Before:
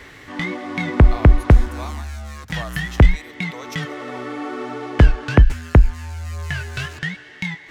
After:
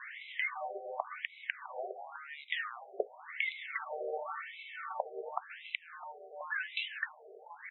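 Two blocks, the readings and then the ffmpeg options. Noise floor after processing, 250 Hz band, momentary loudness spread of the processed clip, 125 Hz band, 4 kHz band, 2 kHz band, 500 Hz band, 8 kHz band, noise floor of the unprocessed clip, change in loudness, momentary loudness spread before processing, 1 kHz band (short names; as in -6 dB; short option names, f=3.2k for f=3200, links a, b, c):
-56 dBFS, -36.5 dB, 11 LU, under -40 dB, -10.5 dB, -10.0 dB, -14.0 dB, n/a, -43 dBFS, -19.5 dB, 15 LU, -11.0 dB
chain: -filter_complex "[0:a]highpass=f=89:p=1,bandreject=f=1.9k:w=29,acrossover=split=190[a][b];[b]acompressor=threshold=-30dB:ratio=3[c];[a][c]amix=inputs=2:normalize=0,aeval=exprs='clip(val(0),-1,0.251)':c=same,afreqshift=20,asplit=2[d][e];[e]adelay=657,lowpass=f=1.4k:p=1,volume=-14.5dB,asplit=2[f][g];[g]adelay=657,lowpass=f=1.4k:p=1,volume=0.42,asplit=2[h][i];[i]adelay=657,lowpass=f=1.4k:p=1,volume=0.42,asplit=2[j][k];[k]adelay=657,lowpass=f=1.4k:p=1,volume=0.42[l];[f][h][j][l]amix=inputs=4:normalize=0[m];[d][m]amix=inputs=2:normalize=0,afftfilt=real='re*between(b*sr/1024,520*pow(2900/520,0.5+0.5*sin(2*PI*0.92*pts/sr))/1.41,520*pow(2900/520,0.5+0.5*sin(2*PI*0.92*pts/sr))*1.41)':imag='im*between(b*sr/1024,520*pow(2900/520,0.5+0.5*sin(2*PI*0.92*pts/sr))/1.41,520*pow(2900/520,0.5+0.5*sin(2*PI*0.92*pts/sr))*1.41)':win_size=1024:overlap=0.75"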